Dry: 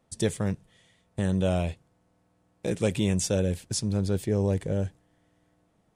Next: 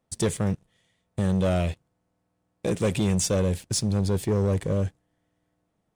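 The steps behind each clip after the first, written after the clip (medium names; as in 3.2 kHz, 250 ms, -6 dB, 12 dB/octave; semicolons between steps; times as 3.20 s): waveshaping leveller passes 2; trim -3 dB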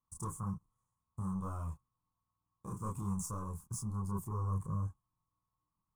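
chorus voices 6, 0.5 Hz, delay 28 ms, depth 3.7 ms; FFT filter 120 Hz 0 dB, 650 Hz -19 dB, 1.1 kHz +12 dB, 1.8 kHz -27 dB, 3.9 kHz -30 dB, 6.4 kHz -7 dB, 14 kHz +3 dB; trim -7 dB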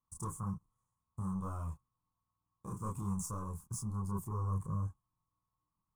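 no audible change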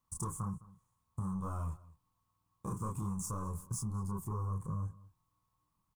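compression, threshold -41 dBFS, peak gain reduction 9.5 dB; echo from a far wall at 36 m, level -20 dB; trim +6.5 dB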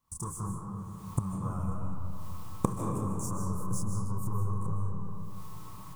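recorder AGC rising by 54 dB/s; algorithmic reverb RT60 3 s, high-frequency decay 0.35×, pre-delay 110 ms, DRR 1 dB; trim +1 dB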